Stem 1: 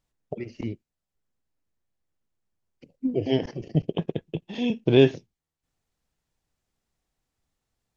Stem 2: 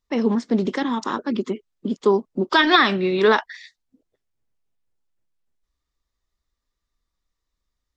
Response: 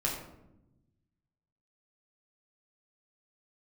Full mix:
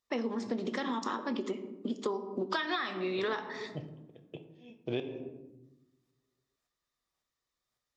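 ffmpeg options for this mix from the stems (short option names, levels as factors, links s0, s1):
-filter_complex "[0:a]aeval=exprs='val(0)*pow(10,-40*if(lt(mod(-1.8*n/s,1),2*abs(-1.8)/1000),1-mod(-1.8*n/s,1)/(2*abs(-1.8)/1000),(mod(-1.8*n/s,1)-2*abs(-1.8)/1000)/(1-2*abs(-1.8)/1000))/20)':c=same,volume=0.562,asplit=2[s0][s1];[s1]volume=0.355[s2];[1:a]volume=0.596,asplit=2[s3][s4];[s4]volume=0.299[s5];[2:a]atrim=start_sample=2205[s6];[s2][s5]amix=inputs=2:normalize=0[s7];[s7][s6]afir=irnorm=-1:irlink=0[s8];[s0][s3][s8]amix=inputs=3:normalize=0,highpass=f=350:p=1,acompressor=threshold=0.0316:ratio=10"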